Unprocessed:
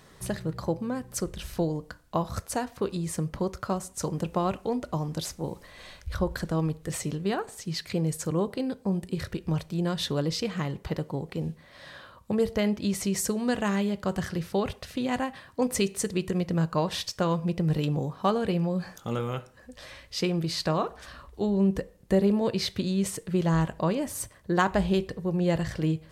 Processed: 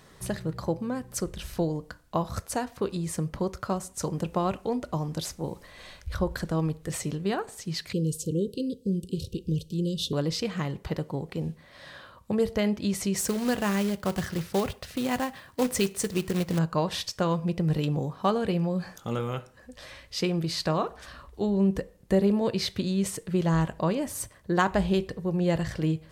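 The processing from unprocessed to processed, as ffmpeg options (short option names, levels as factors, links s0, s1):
-filter_complex "[0:a]asettb=1/sr,asplit=3[s0][s1][s2];[s0]atrim=end=7.934[s3];[s1]atrim=start=7.93:end=10.13,asetpts=PTS-STARTPTS,afade=t=in:d=0.004:c=qsin,afade=t=out:st=2.196:d=0.004:c=qsin,asuperstop=centerf=1200:order=20:qfactor=0.54[s4];[s2]atrim=start=10.126[s5];[s3][s4]acrossfade=d=0.004:c1=hsin:c2=qsin[s6];[s6][s5]acrossfade=d=0.004:c1=qsin:c2=hsin,asettb=1/sr,asplit=3[s7][s8][s9];[s7]atrim=end=13.174[s10];[s8]atrim=start=13.17:end=16.59,asetpts=PTS-STARTPTS,afade=t=in:d=0.004:c=qsin,afade=t=out:st=3.416:d=0.004:c=qsin,acrusher=bits=3:mode=log:mix=0:aa=0.000001[s11];[s9]atrim=start=16.586[s12];[s10][s11]acrossfade=d=0.004:c1=hsin:c2=qsin[s13];[s13][s12]acrossfade=d=0.004:c1=qsin:c2=hsin"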